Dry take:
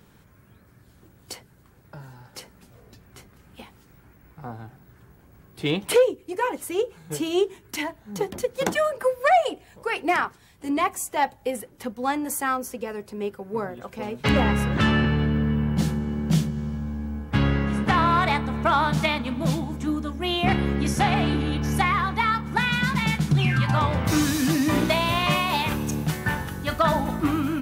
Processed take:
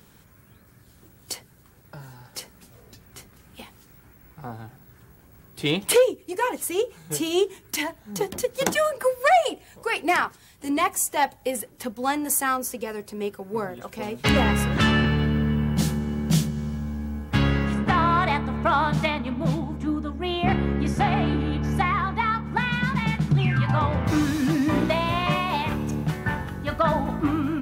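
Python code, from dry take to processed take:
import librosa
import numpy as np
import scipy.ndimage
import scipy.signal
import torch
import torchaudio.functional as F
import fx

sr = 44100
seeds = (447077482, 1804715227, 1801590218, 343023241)

y = fx.high_shelf(x, sr, hz=3700.0, db=fx.steps((0.0, 7.5), (17.73, -6.0), (19.09, -11.5)))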